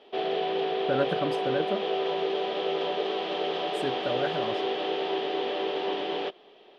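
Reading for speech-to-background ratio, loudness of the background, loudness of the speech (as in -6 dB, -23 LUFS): -3.5 dB, -29.5 LUFS, -33.0 LUFS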